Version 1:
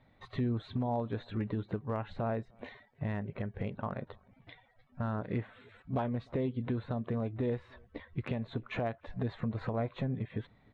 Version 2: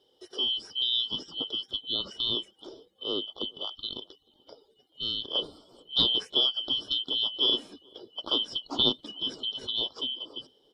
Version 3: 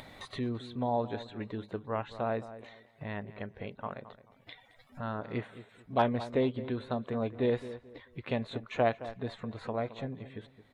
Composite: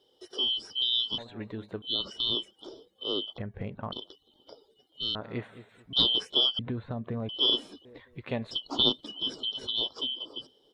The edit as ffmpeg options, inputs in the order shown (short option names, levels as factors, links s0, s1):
-filter_complex "[2:a]asplit=3[s0][s1][s2];[0:a]asplit=2[s3][s4];[1:a]asplit=6[s5][s6][s7][s8][s9][s10];[s5]atrim=end=1.182[s11];[s0]atrim=start=1.178:end=1.822[s12];[s6]atrim=start=1.818:end=3.382[s13];[s3]atrim=start=3.378:end=3.922[s14];[s7]atrim=start=3.918:end=5.152[s15];[s1]atrim=start=5.148:end=5.932[s16];[s8]atrim=start=5.928:end=6.592[s17];[s4]atrim=start=6.588:end=7.292[s18];[s9]atrim=start=7.288:end=7.852[s19];[s2]atrim=start=7.848:end=8.512[s20];[s10]atrim=start=8.508[s21];[s11][s12]acrossfade=d=0.004:c1=hsin:c2=hsin[s22];[s22][s13]acrossfade=d=0.004:c1=hsin:c2=hsin[s23];[s23][s14]acrossfade=d=0.004:c1=hsin:c2=hsin[s24];[s24][s15]acrossfade=d=0.004:c1=hsin:c2=hsin[s25];[s25][s16]acrossfade=d=0.004:c1=hsin:c2=hsin[s26];[s26][s17]acrossfade=d=0.004:c1=hsin:c2=hsin[s27];[s27][s18]acrossfade=d=0.004:c1=hsin:c2=hsin[s28];[s28][s19]acrossfade=d=0.004:c1=hsin:c2=hsin[s29];[s29][s20]acrossfade=d=0.004:c1=hsin:c2=hsin[s30];[s30][s21]acrossfade=d=0.004:c1=hsin:c2=hsin"